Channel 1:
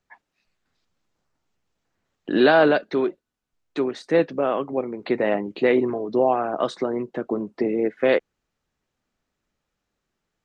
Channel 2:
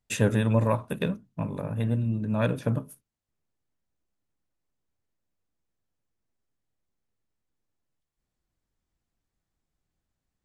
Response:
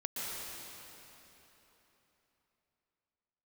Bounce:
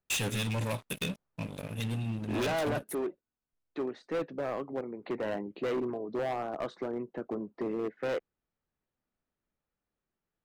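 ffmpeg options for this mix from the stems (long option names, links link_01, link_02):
-filter_complex "[0:a]lowpass=frequency=1900:poles=1,volume=-9dB[link_01];[1:a]highshelf=frequency=1900:width_type=q:width=1.5:gain=13.5,aeval=exprs='sgn(val(0))*max(abs(val(0))-0.0119,0)':channel_layout=same,volume=-4dB[link_02];[link_01][link_02]amix=inputs=2:normalize=0,volume=28dB,asoftclip=hard,volume=-28dB"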